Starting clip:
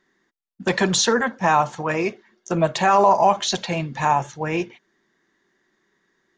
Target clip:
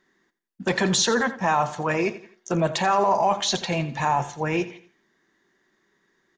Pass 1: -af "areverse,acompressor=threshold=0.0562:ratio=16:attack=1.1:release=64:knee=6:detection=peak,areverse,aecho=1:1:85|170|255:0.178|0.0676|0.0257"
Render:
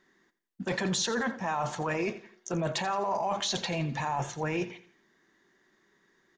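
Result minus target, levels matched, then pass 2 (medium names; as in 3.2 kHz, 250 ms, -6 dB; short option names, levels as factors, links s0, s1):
compression: peak gain reduction +10.5 dB
-af "areverse,acompressor=threshold=0.2:ratio=16:attack=1.1:release=64:knee=6:detection=peak,areverse,aecho=1:1:85|170|255:0.178|0.0676|0.0257"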